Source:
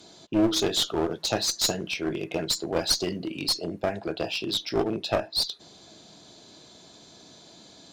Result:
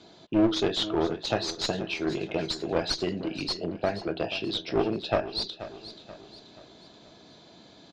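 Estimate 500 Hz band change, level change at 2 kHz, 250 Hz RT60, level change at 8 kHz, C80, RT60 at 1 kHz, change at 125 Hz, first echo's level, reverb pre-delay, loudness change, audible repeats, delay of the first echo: 0.0 dB, −0.5 dB, no reverb audible, −12.0 dB, no reverb audible, no reverb audible, 0.0 dB, −14.0 dB, no reverb audible, −2.0 dB, 4, 481 ms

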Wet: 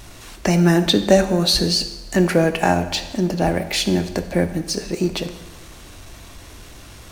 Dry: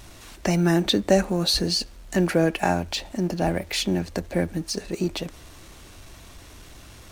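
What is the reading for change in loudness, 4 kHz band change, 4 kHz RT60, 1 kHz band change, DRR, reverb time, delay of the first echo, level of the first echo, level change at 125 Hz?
+5.0 dB, +5.0 dB, 1.0 s, +5.0 dB, 9.0 dB, 1.1 s, no echo audible, no echo audible, +5.0 dB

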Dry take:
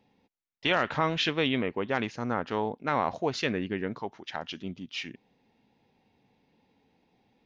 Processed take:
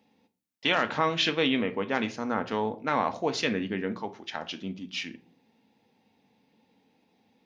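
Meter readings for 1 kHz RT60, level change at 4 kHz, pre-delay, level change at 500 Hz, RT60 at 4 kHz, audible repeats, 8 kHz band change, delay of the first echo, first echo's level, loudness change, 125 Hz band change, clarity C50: 0.40 s, +2.5 dB, 3 ms, +1.0 dB, 0.30 s, no echo audible, can't be measured, no echo audible, no echo audible, +1.0 dB, −2.5 dB, 17.0 dB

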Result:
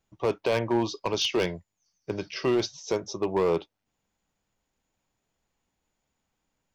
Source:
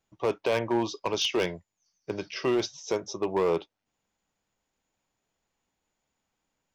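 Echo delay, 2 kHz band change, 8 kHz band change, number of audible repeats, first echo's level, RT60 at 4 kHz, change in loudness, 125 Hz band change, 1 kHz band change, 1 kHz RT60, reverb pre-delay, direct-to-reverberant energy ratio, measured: no echo audible, 0.0 dB, 0.0 dB, no echo audible, no echo audible, no reverb audible, +1.0 dB, +4.0 dB, +0.5 dB, no reverb audible, no reverb audible, no reverb audible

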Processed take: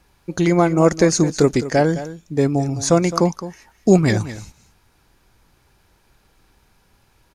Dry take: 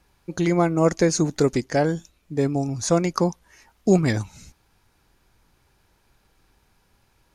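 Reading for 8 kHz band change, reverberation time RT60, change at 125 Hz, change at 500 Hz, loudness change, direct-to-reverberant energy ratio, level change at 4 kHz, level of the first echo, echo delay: +4.5 dB, no reverb audible, +4.5 dB, +4.5 dB, +4.5 dB, no reverb audible, +4.5 dB, −14.0 dB, 212 ms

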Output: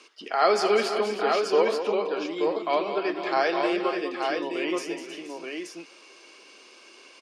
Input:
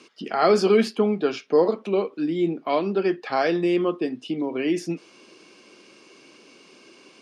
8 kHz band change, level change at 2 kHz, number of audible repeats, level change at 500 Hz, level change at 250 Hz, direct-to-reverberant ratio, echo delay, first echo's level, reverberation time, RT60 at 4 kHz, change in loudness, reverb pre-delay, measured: can't be measured, +2.0 dB, 6, −2.5 dB, −7.5 dB, no reverb audible, 77 ms, −17.0 dB, no reverb audible, no reverb audible, −2.5 dB, no reverb audible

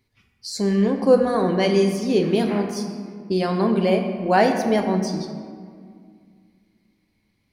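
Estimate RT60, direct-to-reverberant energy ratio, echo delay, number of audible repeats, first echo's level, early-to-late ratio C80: 2.0 s, 4.0 dB, no echo audible, no echo audible, no echo audible, 7.5 dB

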